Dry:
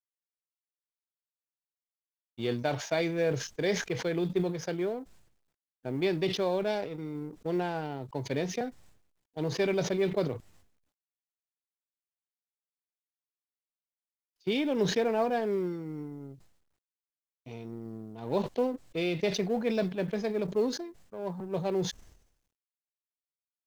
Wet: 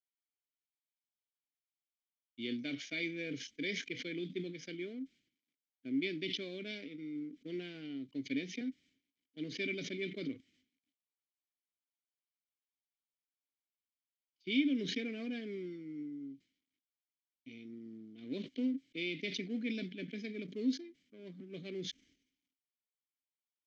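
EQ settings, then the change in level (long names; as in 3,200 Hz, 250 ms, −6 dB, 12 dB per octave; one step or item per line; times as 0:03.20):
formant filter i
high-frequency loss of the air 60 metres
parametric band 6,100 Hz +14.5 dB 1.8 octaves
+3.5 dB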